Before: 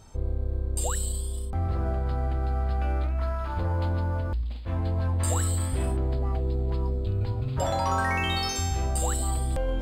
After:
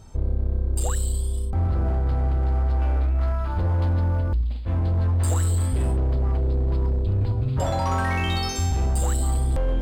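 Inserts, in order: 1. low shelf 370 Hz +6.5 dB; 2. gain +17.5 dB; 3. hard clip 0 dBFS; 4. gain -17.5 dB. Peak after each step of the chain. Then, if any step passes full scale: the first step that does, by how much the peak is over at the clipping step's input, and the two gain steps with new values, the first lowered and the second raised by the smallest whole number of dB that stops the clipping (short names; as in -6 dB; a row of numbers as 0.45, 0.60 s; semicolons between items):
-11.0, +6.5, 0.0, -17.5 dBFS; step 2, 6.5 dB; step 2 +10.5 dB, step 4 -10.5 dB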